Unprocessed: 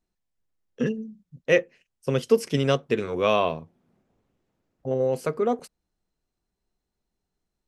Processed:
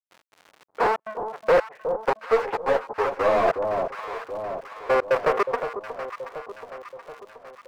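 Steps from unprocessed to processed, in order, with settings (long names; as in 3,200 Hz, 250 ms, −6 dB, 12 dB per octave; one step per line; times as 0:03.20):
each half-wave held at its own peak
flat-topped band-pass 970 Hz, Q 0.71
tube saturation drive 21 dB, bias 0.4
in parallel at −7 dB: bit reduction 6 bits
on the sum: surface crackle 170 per second −46 dBFS
mid-hump overdrive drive 20 dB, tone 1,100 Hz, clips at −15 dBFS
gate pattern ".x.xxx.xx" 141 BPM −60 dB
on a send: delay that swaps between a low-pass and a high-pass 364 ms, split 970 Hz, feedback 72%, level −8 dB
0:02.19–0:03.48: on the sum: string-ensemble chorus
level +4.5 dB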